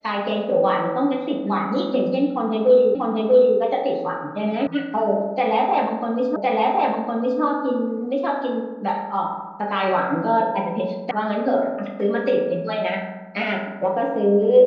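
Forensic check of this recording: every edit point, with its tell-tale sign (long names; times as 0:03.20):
0:02.95: the same again, the last 0.64 s
0:04.67: cut off before it has died away
0:06.36: the same again, the last 1.06 s
0:11.11: cut off before it has died away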